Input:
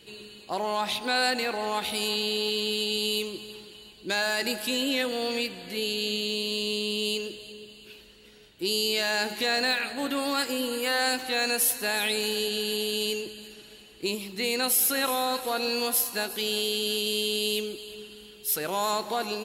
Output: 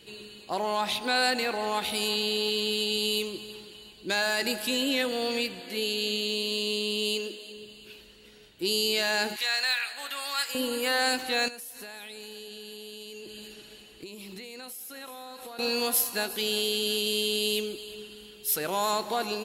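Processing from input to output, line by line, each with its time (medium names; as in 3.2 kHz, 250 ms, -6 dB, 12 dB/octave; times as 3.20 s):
5.60–7.57 s: brick-wall FIR high-pass 190 Hz
9.36–10.55 s: high-pass 1.2 kHz
11.48–15.59 s: compression 16:1, threshold -38 dBFS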